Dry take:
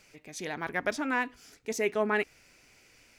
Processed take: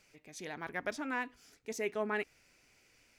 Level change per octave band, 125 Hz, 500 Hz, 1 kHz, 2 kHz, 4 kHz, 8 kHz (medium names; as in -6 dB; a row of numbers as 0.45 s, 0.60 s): -7.0 dB, -7.0 dB, -7.0 dB, -7.0 dB, -7.0 dB, -7.0 dB